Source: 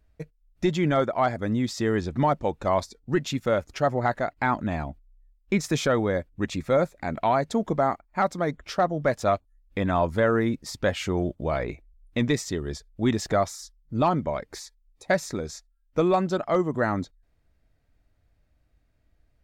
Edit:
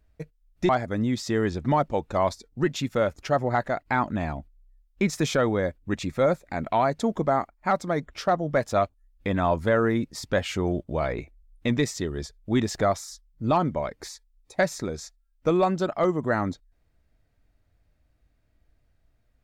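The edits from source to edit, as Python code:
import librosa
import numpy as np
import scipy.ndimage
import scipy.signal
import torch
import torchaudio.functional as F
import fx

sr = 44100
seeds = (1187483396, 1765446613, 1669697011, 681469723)

y = fx.edit(x, sr, fx.cut(start_s=0.69, length_s=0.51), tone=tone)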